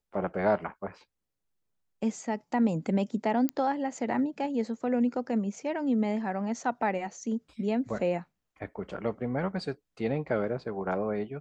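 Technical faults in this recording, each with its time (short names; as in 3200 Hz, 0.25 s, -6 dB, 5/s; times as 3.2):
3.49 pop -15 dBFS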